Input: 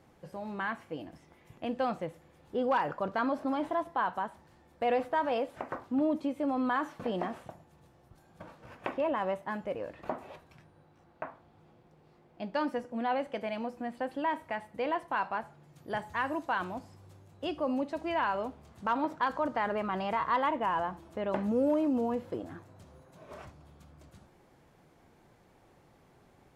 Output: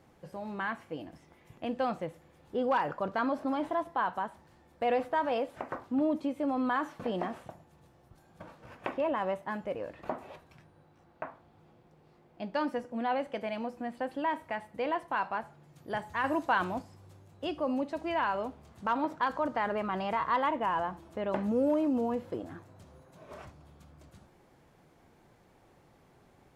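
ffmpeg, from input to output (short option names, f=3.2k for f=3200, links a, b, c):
-filter_complex "[0:a]asplit=3[a][b][c];[a]atrim=end=16.242[d];[b]atrim=start=16.238:end=16.822,asetpts=PTS-STARTPTS,volume=4dB[e];[c]atrim=start=16.818[f];[d][e]acrossfade=d=0.004:c1=hsin:c2=hsin[g];[g][f]acrossfade=d=0.004:c1=hsin:c2=hsin"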